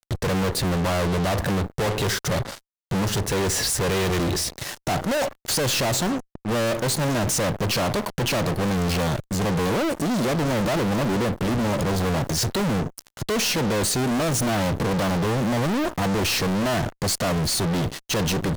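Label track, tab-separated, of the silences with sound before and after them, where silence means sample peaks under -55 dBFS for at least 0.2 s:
2.600000	2.910000	silence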